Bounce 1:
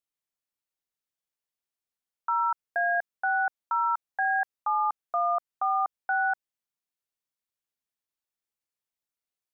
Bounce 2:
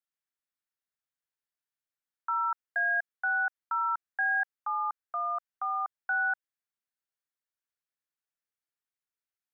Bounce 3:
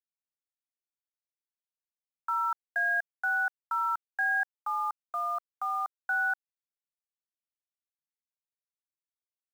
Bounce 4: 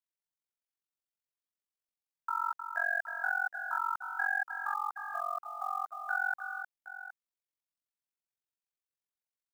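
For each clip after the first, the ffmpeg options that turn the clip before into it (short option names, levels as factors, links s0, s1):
-filter_complex "[0:a]equalizer=f=1600:t=o:w=0.87:g=8,acrossover=split=780|910[s0][s1][s2];[s0]alimiter=level_in=3.55:limit=0.0631:level=0:latency=1,volume=0.282[s3];[s3][s1][s2]amix=inputs=3:normalize=0,volume=0.447"
-af "acrusher=bits=8:mix=0:aa=0.000001"
-af "tremolo=f=45:d=1,aecho=1:1:310|768:0.398|0.224"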